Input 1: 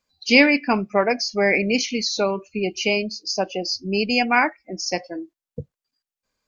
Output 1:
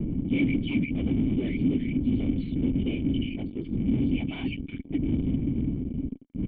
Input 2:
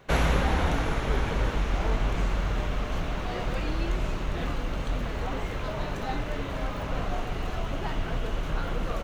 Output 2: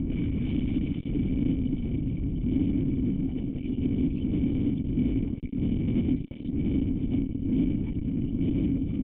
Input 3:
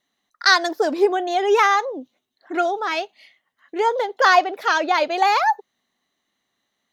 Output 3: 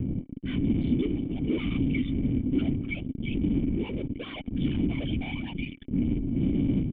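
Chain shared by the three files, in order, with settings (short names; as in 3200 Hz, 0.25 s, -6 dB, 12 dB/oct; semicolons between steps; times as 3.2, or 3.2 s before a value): per-bin expansion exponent 3; wind noise 180 Hz -27 dBFS; notch 840 Hz, Q 12; bands offset in time lows, highs 0.35 s, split 2600 Hz; AGC gain up to 7 dB; whisperiser; low shelf 250 Hz +9.5 dB; fuzz box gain 25 dB, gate -32 dBFS; limiter -18 dBFS; vocal tract filter i; gain +4.5 dB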